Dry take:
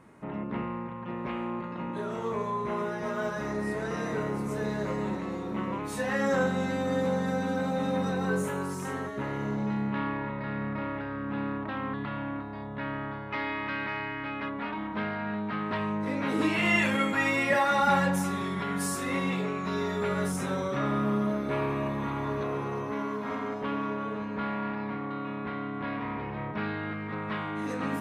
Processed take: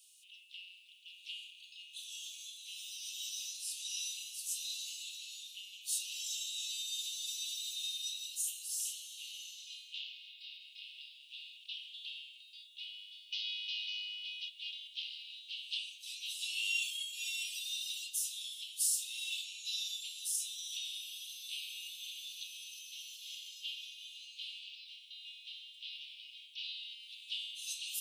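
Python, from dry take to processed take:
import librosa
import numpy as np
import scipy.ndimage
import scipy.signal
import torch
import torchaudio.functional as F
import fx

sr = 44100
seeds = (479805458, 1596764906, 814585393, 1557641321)

y = scipy.signal.sosfilt(scipy.signal.butter(16, 2800.0, 'highpass', fs=sr, output='sos'), x)
y = fx.high_shelf(y, sr, hz=4600.0, db=6.5)
y = fx.rider(y, sr, range_db=5, speed_s=0.5)
y = y + 10.0 ** (-23.0 / 20.0) * np.pad(y, (int(376 * sr / 1000.0), 0))[:len(y)]
y = y * 10.0 ** (3.5 / 20.0)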